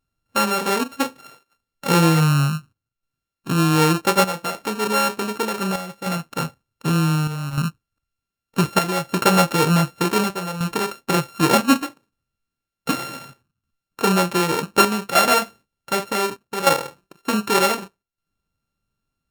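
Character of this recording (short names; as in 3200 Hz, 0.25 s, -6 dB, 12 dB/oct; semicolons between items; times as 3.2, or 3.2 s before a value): a buzz of ramps at a fixed pitch in blocks of 32 samples; chopped level 0.66 Hz, depth 60%, duty 80%; Opus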